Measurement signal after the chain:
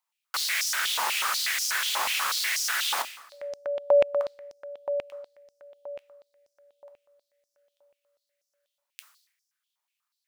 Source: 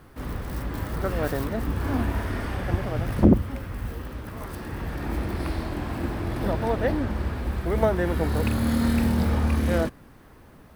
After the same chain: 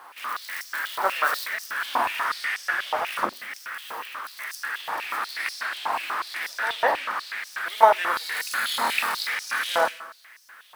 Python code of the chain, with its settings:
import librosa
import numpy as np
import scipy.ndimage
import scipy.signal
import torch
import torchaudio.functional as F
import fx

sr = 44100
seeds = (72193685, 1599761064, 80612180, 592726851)

y = fx.rev_plate(x, sr, seeds[0], rt60_s=0.83, hf_ratio=0.9, predelay_ms=0, drr_db=6.0)
y = fx.filter_held_highpass(y, sr, hz=8.2, low_hz=920.0, high_hz=5500.0)
y = F.gain(torch.from_numpy(y), 5.0).numpy()